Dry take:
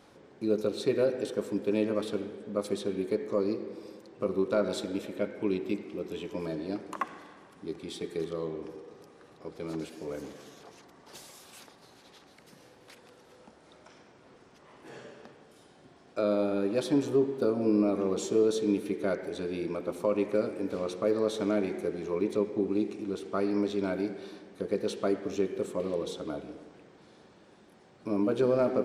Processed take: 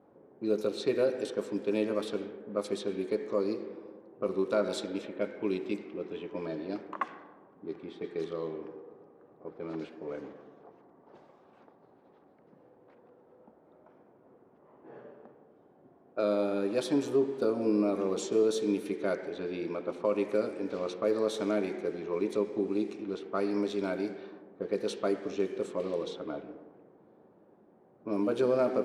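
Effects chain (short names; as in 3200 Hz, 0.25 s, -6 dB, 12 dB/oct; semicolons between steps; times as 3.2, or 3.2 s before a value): low-pass opened by the level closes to 670 Hz, open at -25.5 dBFS; HPF 230 Hz 6 dB/oct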